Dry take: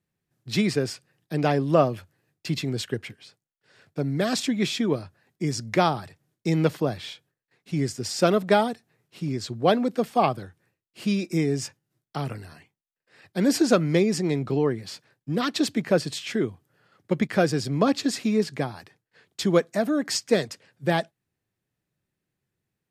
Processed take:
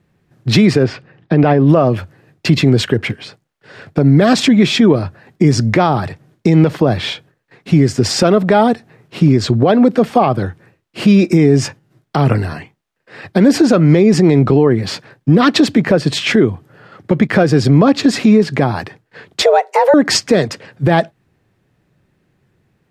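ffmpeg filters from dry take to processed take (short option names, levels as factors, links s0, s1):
-filter_complex "[0:a]asettb=1/sr,asplit=3[s0][s1][s2];[s0]atrim=end=0.834[s3];[s1]atrim=start=0.83:end=1.69,asetpts=PTS-STARTPTS,afade=t=in:d=0.004:c=qsin,afade=t=out:st=0.856:d=0.004:c=qsin,lowpass=3300[s4];[s2]atrim=start=1.686[s5];[s3][s4]acrossfade=d=0.004:c1=hsin:c2=qsin[s6];[s6][s5]acrossfade=d=0.004:c1=qsin:c2=hsin,asettb=1/sr,asplit=3[s7][s8][s9];[s7]atrim=end=19.424[s10];[s8]atrim=start=19.42:end=19.94,asetpts=PTS-STARTPTS,afade=t=in:d=0.004:c=qsin,afade=t=out:st=0.516:d=0.004:c=qsin,afreqshift=270[s11];[s9]atrim=start=19.936[s12];[s10][s11]acrossfade=d=0.004:c1=hsin:c2=qsin[s13];[s13][s12]acrossfade=d=0.004:c1=qsin:c2=hsin,lowpass=f=1800:p=1,acompressor=threshold=0.0398:ratio=3,alimiter=level_in=15.8:limit=0.891:release=50:level=0:latency=1,volume=0.891"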